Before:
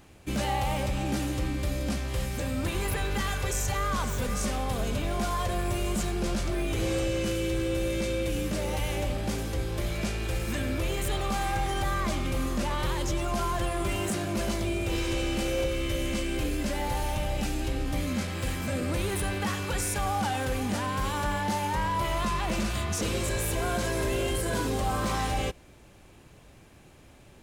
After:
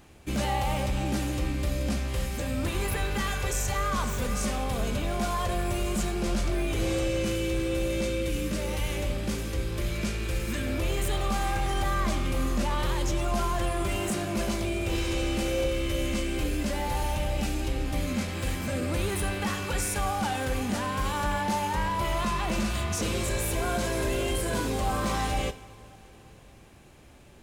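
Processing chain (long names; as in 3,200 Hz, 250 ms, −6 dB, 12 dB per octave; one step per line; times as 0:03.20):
loose part that buzzes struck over −32 dBFS, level −37 dBFS
0:08.09–0:10.67: parametric band 750 Hz −8 dB 0.49 octaves
coupled-rooms reverb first 0.54 s, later 4.2 s, from −15 dB, DRR 11.5 dB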